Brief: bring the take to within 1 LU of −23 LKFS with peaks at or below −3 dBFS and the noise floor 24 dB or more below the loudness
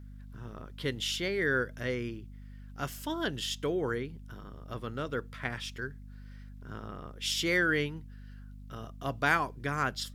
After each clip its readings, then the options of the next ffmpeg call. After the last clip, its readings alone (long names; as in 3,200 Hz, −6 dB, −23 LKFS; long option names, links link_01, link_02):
mains hum 50 Hz; hum harmonics up to 250 Hz; level of the hum −44 dBFS; integrated loudness −32.5 LKFS; sample peak −11.5 dBFS; target loudness −23.0 LKFS
→ -af "bandreject=frequency=50:width_type=h:width=6,bandreject=frequency=100:width_type=h:width=6,bandreject=frequency=150:width_type=h:width=6,bandreject=frequency=200:width_type=h:width=6,bandreject=frequency=250:width_type=h:width=6"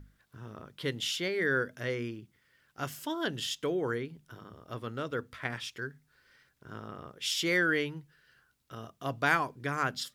mains hum none found; integrated loudness −32.5 LKFS; sample peak −11.5 dBFS; target loudness −23.0 LKFS
→ -af "volume=9.5dB,alimiter=limit=-3dB:level=0:latency=1"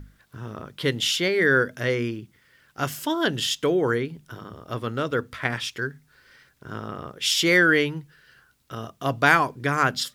integrated loudness −23.0 LKFS; sample peak −3.0 dBFS; background noise floor −62 dBFS